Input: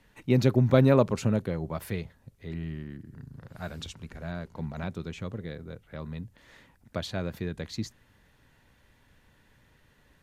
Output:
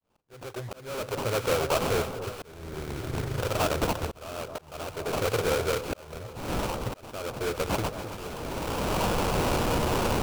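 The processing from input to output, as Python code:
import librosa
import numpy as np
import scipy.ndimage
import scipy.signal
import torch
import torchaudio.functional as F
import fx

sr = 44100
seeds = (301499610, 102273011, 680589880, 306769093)

p1 = fx.fade_in_head(x, sr, length_s=1.35)
p2 = fx.recorder_agc(p1, sr, target_db=-18.0, rise_db_per_s=23.0, max_gain_db=30)
p3 = fx.curve_eq(p2, sr, hz=(120.0, 210.0, 450.0), db=(0, -17, 13))
p4 = fx.sample_hold(p3, sr, seeds[0], rate_hz=1900.0, jitter_pct=20)
p5 = 10.0 ** (-20.5 / 20.0) * np.tanh(p4 / 10.0 ** (-20.5 / 20.0))
p6 = p5 + fx.echo_alternate(p5, sr, ms=260, hz=1200.0, feedback_pct=80, wet_db=-11.0, dry=0)
y = fx.auto_swell(p6, sr, attack_ms=790.0)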